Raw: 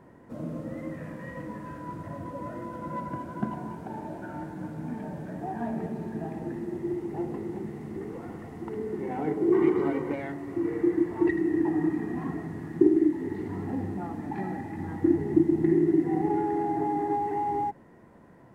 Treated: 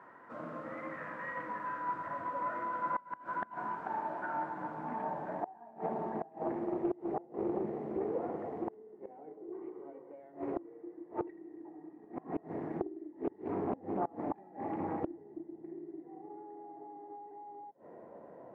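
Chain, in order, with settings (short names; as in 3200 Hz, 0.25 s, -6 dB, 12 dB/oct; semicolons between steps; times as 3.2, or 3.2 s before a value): band-pass sweep 1300 Hz -> 580 Hz, 3.58–7.41; flipped gate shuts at -33 dBFS, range -24 dB; Doppler distortion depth 0.45 ms; gain +10 dB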